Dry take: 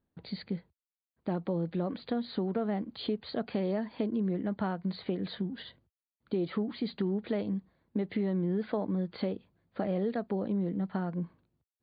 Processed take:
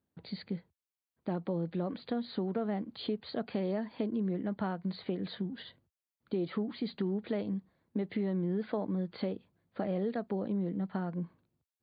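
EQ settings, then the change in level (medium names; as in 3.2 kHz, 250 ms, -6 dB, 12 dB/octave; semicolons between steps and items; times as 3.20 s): high-pass 69 Hz; -2.0 dB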